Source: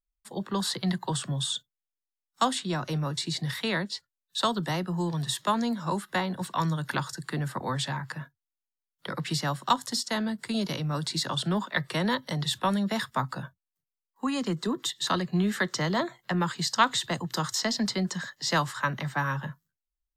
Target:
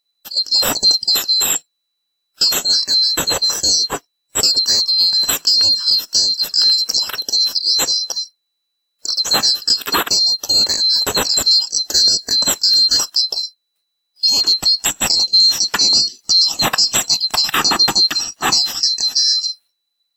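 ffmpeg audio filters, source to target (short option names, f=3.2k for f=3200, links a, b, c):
-af "afftfilt=real='real(if(lt(b,736),b+184*(1-2*mod(floor(b/184),2)),b),0)':imag='imag(if(lt(b,736),b+184*(1-2*mod(floor(b/184),2)),b),0)':win_size=2048:overlap=0.75,lowshelf=f=130:g=-10.5,alimiter=level_in=17.5dB:limit=-1dB:release=50:level=0:latency=1,volume=-3dB"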